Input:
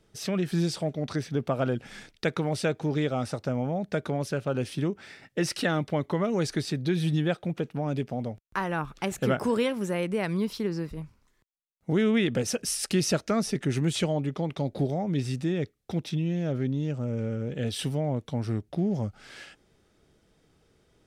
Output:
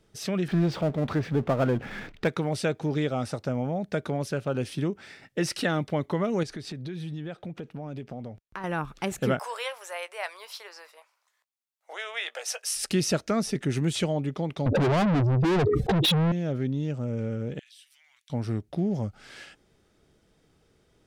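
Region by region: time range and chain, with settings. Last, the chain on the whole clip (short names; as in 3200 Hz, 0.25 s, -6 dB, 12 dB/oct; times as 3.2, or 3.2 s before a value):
0.48–2.28 LPF 2200 Hz + power-law curve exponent 0.7
6.43–8.64 high shelf 7000 Hz -9 dB + compressor 4:1, threshold -34 dBFS
9.39–12.76 steep high-pass 610 Hz + doubler 17 ms -13.5 dB
14.66–16.32 spectral contrast raised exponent 2.7 + overdrive pedal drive 39 dB, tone 4600 Hz, clips at -17.5 dBFS + fast leveller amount 100%
17.59–18.3 inverse Chebyshev high-pass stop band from 560 Hz, stop band 60 dB + compressor 3:1, threshold -57 dBFS
whole clip: dry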